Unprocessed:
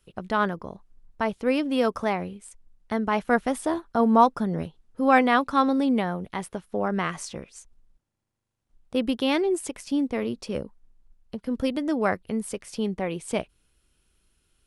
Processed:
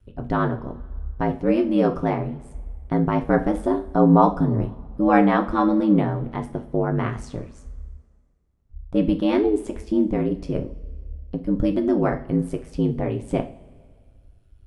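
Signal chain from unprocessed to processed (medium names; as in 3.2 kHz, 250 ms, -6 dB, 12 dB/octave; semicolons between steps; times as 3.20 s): tilt EQ -3.5 dB/octave; ring modulator 52 Hz; two-slope reverb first 0.33 s, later 1.9 s, from -20 dB, DRR 4.5 dB; trim +1 dB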